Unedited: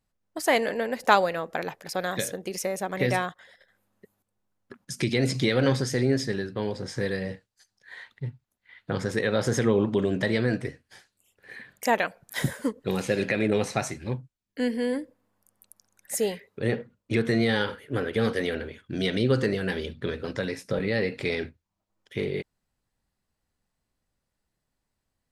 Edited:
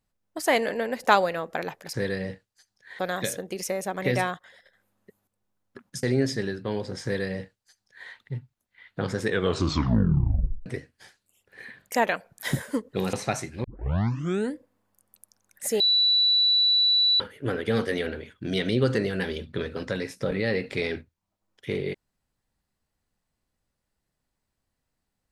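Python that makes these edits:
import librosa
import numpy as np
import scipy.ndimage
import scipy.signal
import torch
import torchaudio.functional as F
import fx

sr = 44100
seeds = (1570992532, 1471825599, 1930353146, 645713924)

y = fx.edit(x, sr, fx.cut(start_s=4.98, length_s=0.96),
    fx.duplicate(start_s=6.95, length_s=1.05, to_s=1.94),
    fx.tape_stop(start_s=9.16, length_s=1.41),
    fx.cut(start_s=13.04, length_s=0.57),
    fx.tape_start(start_s=14.12, length_s=0.9),
    fx.bleep(start_s=16.28, length_s=1.4, hz=3950.0, db=-17.5), tone=tone)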